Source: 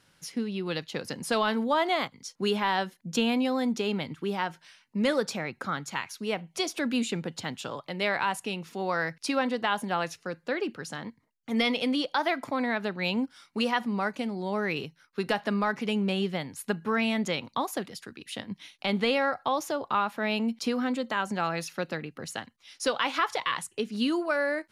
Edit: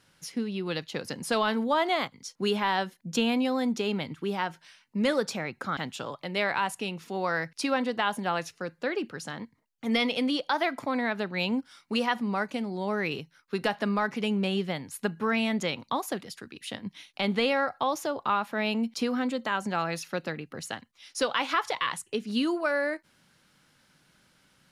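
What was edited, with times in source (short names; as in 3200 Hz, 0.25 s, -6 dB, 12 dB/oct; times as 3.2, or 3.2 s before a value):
5.77–7.42 cut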